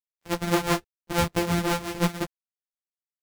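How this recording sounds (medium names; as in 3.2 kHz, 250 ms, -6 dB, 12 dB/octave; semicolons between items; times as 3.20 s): a buzz of ramps at a fixed pitch in blocks of 256 samples; tremolo triangle 6 Hz, depth 85%; a quantiser's noise floor 12-bit, dither none; a shimmering, thickened sound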